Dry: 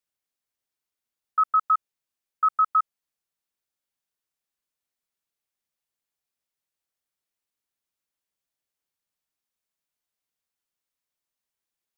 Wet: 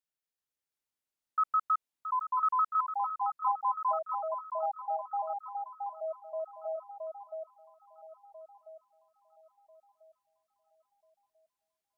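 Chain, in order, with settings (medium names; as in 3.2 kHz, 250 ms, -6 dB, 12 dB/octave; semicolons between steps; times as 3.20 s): ever faster or slower copies 384 ms, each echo -4 st, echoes 3; on a send: echo whose repeats swap between lows and highs 671 ms, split 1.1 kHz, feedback 56%, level -4 dB; on the sum: trim -7.5 dB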